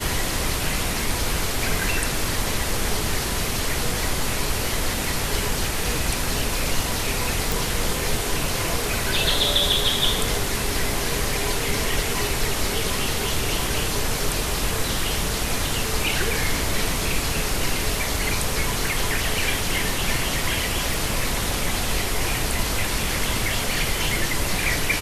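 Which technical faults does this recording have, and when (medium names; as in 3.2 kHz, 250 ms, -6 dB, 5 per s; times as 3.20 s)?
crackle 13 per s -30 dBFS
7.52 s: pop
20.94 s: pop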